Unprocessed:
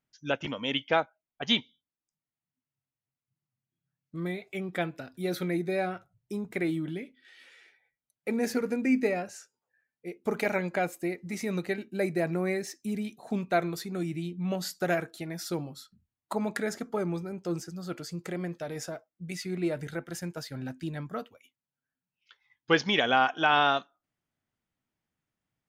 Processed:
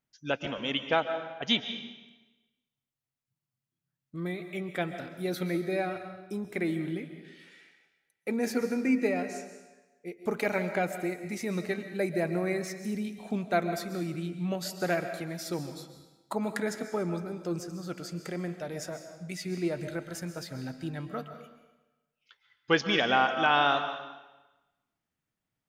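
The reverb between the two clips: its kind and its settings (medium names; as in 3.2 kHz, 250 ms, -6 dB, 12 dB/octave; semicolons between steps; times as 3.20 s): algorithmic reverb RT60 1.1 s, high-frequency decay 0.95×, pre-delay 95 ms, DRR 8.5 dB; trim -1 dB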